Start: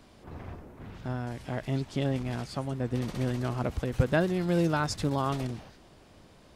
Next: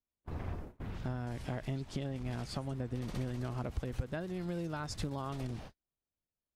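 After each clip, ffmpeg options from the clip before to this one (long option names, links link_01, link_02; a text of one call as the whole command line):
ffmpeg -i in.wav -af "agate=range=-45dB:threshold=-46dB:ratio=16:detection=peak,acompressor=threshold=-35dB:ratio=12,lowshelf=frequency=64:gain=9.5" out.wav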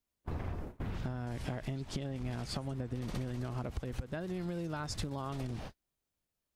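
ffmpeg -i in.wav -af "acompressor=threshold=-40dB:ratio=6,volume=6dB" out.wav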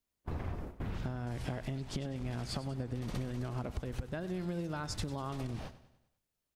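ffmpeg -i in.wav -af "aecho=1:1:98|196|294|392|490:0.178|0.0871|0.0427|0.0209|0.0103" out.wav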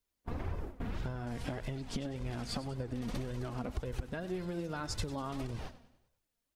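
ffmpeg -i in.wav -af "flanger=delay=1.9:depth=2.4:regen=35:speed=1.8:shape=sinusoidal,volume=4.5dB" out.wav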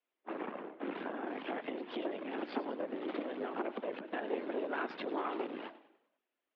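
ffmpeg -i in.wav -af "afftfilt=real='hypot(re,im)*cos(2*PI*random(0))':imag='hypot(re,im)*sin(2*PI*random(1))':win_size=512:overlap=0.75,aeval=exprs='0.0398*(cos(1*acos(clip(val(0)/0.0398,-1,1)))-cos(1*PI/2))+0.00794*(cos(4*acos(clip(val(0)/0.0398,-1,1)))-cos(4*PI/2))':channel_layout=same,highpass=frequency=210:width_type=q:width=0.5412,highpass=frequency=210:width_type=q:width=1.307,lowpass=frequency=3200:width_type=q:width=0.5176,lowpass=frequency=3200:width_type=q:width=0.7071,lowpass=frequency=3200:width_type=q:width=1.932,afreqshift=64,volume=8.5dB" out.wav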